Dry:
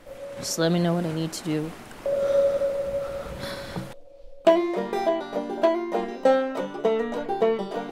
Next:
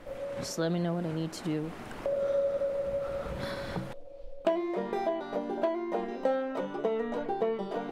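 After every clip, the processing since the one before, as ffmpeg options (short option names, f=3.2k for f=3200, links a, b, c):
-af "acompressor=threshold=-35dB:ratio=2,highshelf=f=3.9k:g=-9,volume=1.5dB"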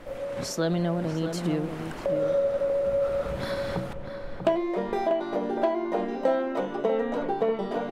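-filter_complex "[0:a]asplit=2[a][b];[b]adelay=641.4,volume=-7dB,highshelf=f=4k:g=-14.4[c];[a][c]amix=inputs=2:normalize=0,volume=4dB"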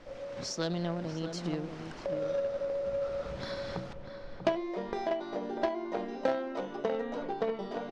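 -filter_complex "[0:a]asplit=2[a][b];[b]acrusher=bits=2:mix=0:aa=0.5,volume=-6dB[c];[a][c]amix=inputs=2:normalize=0,lowpass=f=5.5k:t=q:w=2.1,volume=-8dB"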